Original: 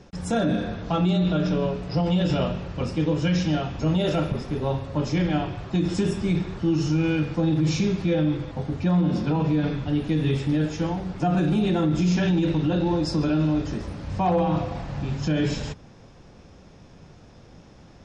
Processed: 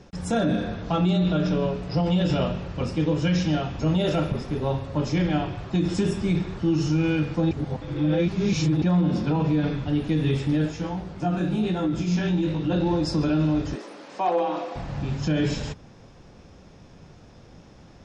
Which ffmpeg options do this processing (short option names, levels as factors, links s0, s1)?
-filter_complex "[0:a]asplit=3[s0][s1][s2];[s0]afade=t=out:st=10.7:d=0.02[s3];[s1]flanger=delay=16:depth=7.4:speed=1.1,afade=t=in:st=10.7:d=0.02,afade=t=out:st=12.69:d=0.02[s4];[s2]afade=t=in:st=12.69:d=0.02[s5];[s3][s4][s5]amix=inputs=3:normalize=0,asettb=1/sr,asplit=3[s6][s7][s8];[s6]atrim=end=13.754[s9];[s7]atrim=start=13.75:end=14.76,asetpts=PTS-STARTPTS,afade=t=in:d=0.004:c=qsin,afade=t=out:st=1.006:d=0.004:c=qsin,highpass=f=310:w=0.5412,highpass=f=310:w=1.3066[s10];[s8]atrim=start=14.756[s11];[s9][s10]acrossfade=d=0.004:c1=hsin:c2=qsin[s12];[s12][s11]acrossfade=d=0.004:c1=qsin:c2=hsin,asplit=3[s13][s14][s15];[s13]atrim=end=7.512[s16];[s14]atrim=start=7.508:end=8.822,asetpts=PTS-STARTPTS,areverse[s17];[s15]atrim=start=8.818[s18];[s16][s17]acrossfade=d=0.004:c1=hsin:c2=hsin[s19];[s19][s18]acrossfade=d=0.004:c1=hsin:c2=hsin"